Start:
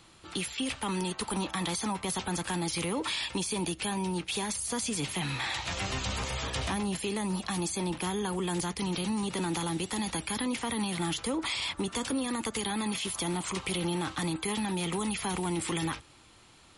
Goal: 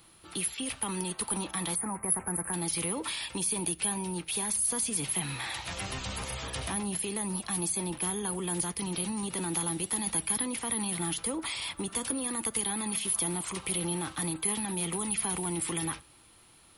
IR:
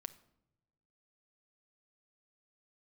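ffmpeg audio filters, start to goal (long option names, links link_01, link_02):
-filter_complex "[0:a]asplit=3[link_01][link_02][link_03];[link_01]afade=type=out:start_time=1.74:duration=0.02[link_04];[link_02]asuperstop=centerf=4400:order=8:qfactor=0.69,afade=type=in:start_time=1.74:duration=0.02,afade=type=out:start_time=2.52:duration=0.02[link_05];[link_03]afade=type=in:start_time=2.52:duration=0.02[link_06];[link_04][link_05][link_06]amix=inputs=3:normalize=0,asplit=2[link_07][link_08];[1:a]atrim=start_sample=2205,afade=type=out:start_time=0.17:duration=0.01,atrim=end_sample=7938[link_09];[link_08][link_09]afir=irnorm=-1:irlink=0,volume=0dB[link_10];[link_07][link_10]amix=inputs=2:normalize=0,aexciter=amount=10:drive=1.9:freq=10000,volume=-7.5dB"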